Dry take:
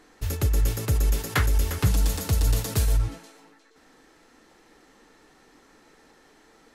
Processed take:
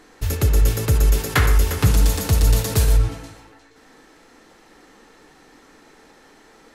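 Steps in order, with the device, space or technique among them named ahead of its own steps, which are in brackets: filtered reverb send (on a send: high-pass 220 Hz 6 dB/octave + low-pass 4.2 kHz + reverberation RT60 0.75 s, pre-delay 54 ms, DRR 6 dB); on the sum: trim +5.5 dB

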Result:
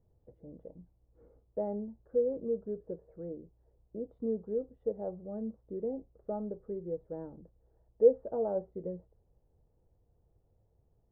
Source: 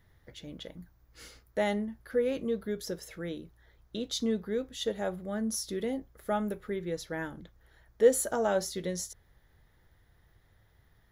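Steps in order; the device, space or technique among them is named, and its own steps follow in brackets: under water (low-pass 780 Hz 24 dB/octave; peaking EQ 470 Hz +6 dB 0.43 oct); trim -6 dB

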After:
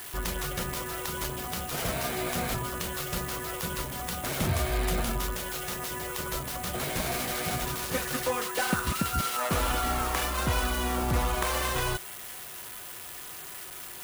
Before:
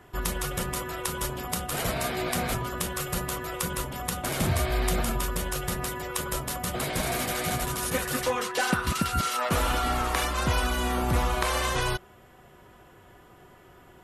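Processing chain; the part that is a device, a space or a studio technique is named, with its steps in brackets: 5.35–5.91 s: bass shelf 160 Hz -10 dB; budget class-D amplifier (dead-time distortion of 0.094 ms; zero-crossing glitches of -23 dBFS); trim -2 dB

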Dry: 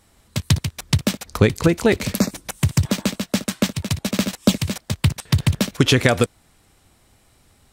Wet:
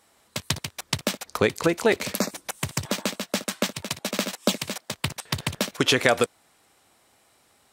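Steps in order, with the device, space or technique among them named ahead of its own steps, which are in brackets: filter by subtraction (in parallel: low-pass 690 Hz 12 dB/octave + polarity flip); 3.82–4.97 s: on the sum: high-pass 130 Hz; trim -2.5 dB

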